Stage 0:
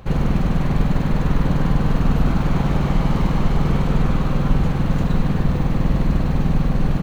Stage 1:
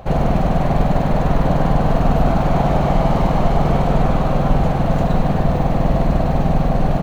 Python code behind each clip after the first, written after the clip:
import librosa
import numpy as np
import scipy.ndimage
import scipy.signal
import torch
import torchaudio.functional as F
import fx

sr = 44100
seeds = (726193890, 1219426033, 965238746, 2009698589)

y = fx.peak_eq(x, sr, hz=680.0, db=14.5, octaves=0.68)
y = y * librosa.db_to_amplitude(1.0)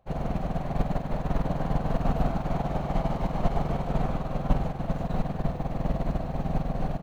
y = fx.upward_expand(x, sr, threshold_db=-25.0, expansion=2.5)
y = y * librosa.db_to_amplitude(-6.0)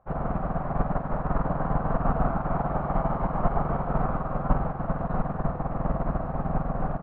y = fx.lowpass_res(x, sr, hz=1300.0, q=2.9)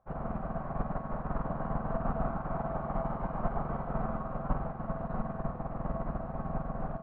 y = fx.comb_fb(x, sr, f0_hz=220.0, decay_s=0.57, harmonics='odd', damping=0.0, mix_pct=70)
y = y * librosa.db_to_amplitude(2.0)